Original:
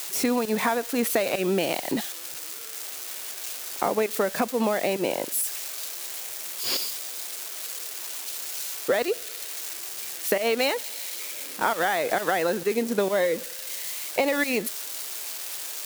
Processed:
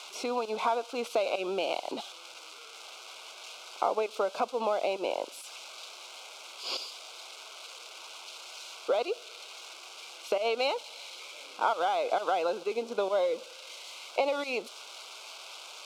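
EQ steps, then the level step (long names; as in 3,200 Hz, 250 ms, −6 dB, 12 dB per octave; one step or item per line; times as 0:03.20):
dynamic equaliser 1,900 Hz, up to −6 dB, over −44 dBFS, Q 1.6
band-pass filter 580–3,400 Hz
Butterworth band-reject 1,800 Hz, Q 2.4
0.0 dB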